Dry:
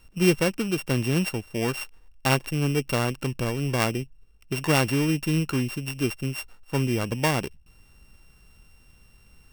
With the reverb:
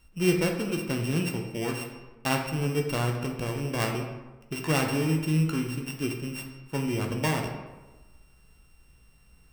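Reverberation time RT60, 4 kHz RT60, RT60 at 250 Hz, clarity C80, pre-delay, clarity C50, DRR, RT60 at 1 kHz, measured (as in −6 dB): 1.2 s, 0.70 s, 1.2 s, 7.5 dB, 7 ms, 5.0 dB, 1.5 dB, 1.2 s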